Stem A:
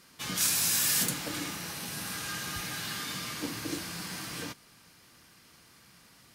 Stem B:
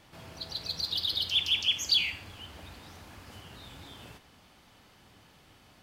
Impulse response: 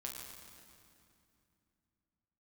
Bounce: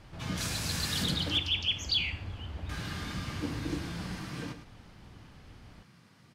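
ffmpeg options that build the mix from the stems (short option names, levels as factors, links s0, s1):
-filter_complex "[0:a]highpass=f=99:w=0.5412,highpass=f=99:w=1.3066,volume=0.75,asplit=3[s0][s1][s2];[s0]atrim=end=1.38,asetpts=PTS-STARTPTS,afade=t=out:st=1.376:d=0.004:c=hsin[s3];[s1]atrim=start=1.38:end=2.69,asetpts=PTS-STARTPTS,volume=0[s4];[s2]atrim=start=2.69,asetpts=PTS-STARTPTS,afade=t=in:d=0.004:c=hsin[s5];[s3][s4][s5]concat=n=3:v=0:a=1,asplit=2[s6][s7];[s7]volume=0.299[s8];[1:a]volume=1[s9];[s8]aecho=0:1:108:1[s10];[s6][s9][s10]amix=inputs=3:normalize=0,aemphasis=mode=reproduction:type=bsi"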